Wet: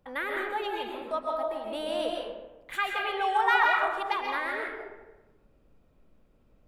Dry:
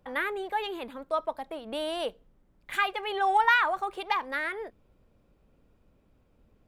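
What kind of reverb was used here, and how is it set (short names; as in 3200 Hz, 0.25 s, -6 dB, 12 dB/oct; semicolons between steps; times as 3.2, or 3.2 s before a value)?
digital reverb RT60 1.1 s, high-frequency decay 0.55×, pre-delay 95 ms, DRR -0.5 dB; gain -3 dB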